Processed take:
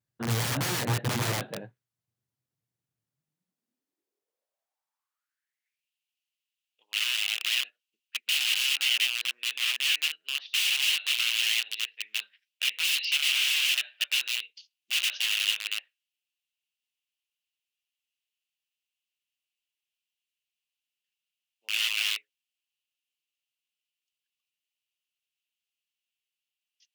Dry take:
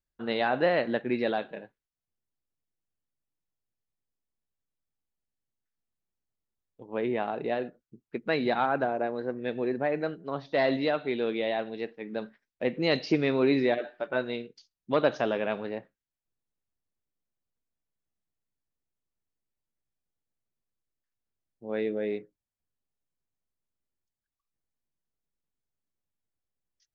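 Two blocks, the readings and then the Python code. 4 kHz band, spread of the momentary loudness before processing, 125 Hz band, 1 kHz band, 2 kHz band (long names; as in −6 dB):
+16.5 dB, 12 LU, can't be measured, −9.0 dB, +6.0 dB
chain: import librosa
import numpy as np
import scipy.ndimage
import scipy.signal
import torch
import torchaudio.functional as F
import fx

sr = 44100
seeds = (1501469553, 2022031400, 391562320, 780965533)

y = fx.vibrato(x, sr, rate_hz=0.38, depth_cents=19.0)
y = (np.mod(10.0 ** (27.5 / 20.0) * y + 1.0, 2.0) - 1.0) / 10.0 ** (27.5 / 20.0)
y = fx.filter_sweep_highpass(y, sr, from_hz=120.0, to_hz=2800.0, start_s=3.08, end_s=5.9, q=6.1)
y = y * librosa.db_to_amplitude(2.0)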